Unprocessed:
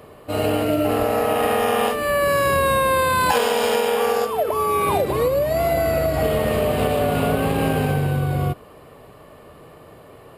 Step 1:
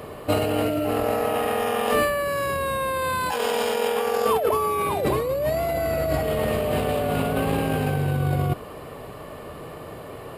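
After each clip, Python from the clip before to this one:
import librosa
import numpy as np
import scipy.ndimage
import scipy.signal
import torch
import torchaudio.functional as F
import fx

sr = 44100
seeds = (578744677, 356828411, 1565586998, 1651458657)

y = fx.over_compress(x, sr, threshold_db=-25.0, ratio=-1.0)
y = F.gain(torch.from_numpy(y), 1.5).numpy()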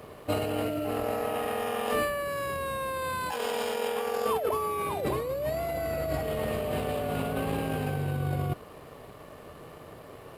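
y = np.sign(x) * np.maximum(np.abs(x) - 10.0 ** (-48.0 / 20.0), 0.0)
y = F.gain(torch.from_numpy(y), -6.5).numpy()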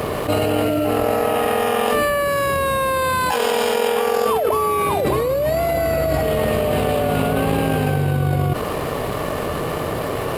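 y = fx.env_flatten(x, sr, amount_pct=70)
y = F.gain(torch.from_numpy(y), 8.0).numpy()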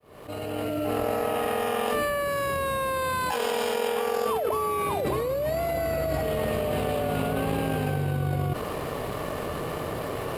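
y = fx.fade_in_head(x, sr, length_s=0.91)
y = F.gain(torch.from_numpy(y), -8.0).numpy()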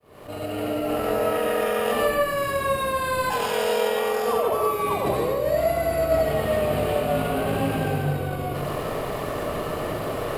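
y = fx.rev_freeverb(x, sr, rt60_s=0.69, hf_ratio=0.5, predelay_ms=55, drr_db=-0.5)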